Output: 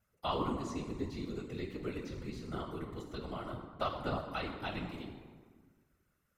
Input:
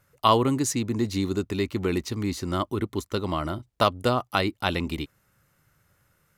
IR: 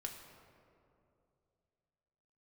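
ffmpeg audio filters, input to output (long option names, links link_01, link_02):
-filter_complex "[1:a]atrim=start_sample=2205,asetrate=79380,aresample=44100[link_01];[0:a][link_01]afir=irnorm=-1:irlink=0,acrossover=split=4800[link_02][link_03];[link_03]acompressor=threshold=-58dB:ratio=4:attack=1:release=60[link_04];[link_02][link_04]amix=inputs=2:normalize=0,afftfilt=real='hypot(re,im)*cos(2*PI*random(0))':imag='hypot(re,im)*sin(2*PI*random(1))':win_size=512:overlap=0.75"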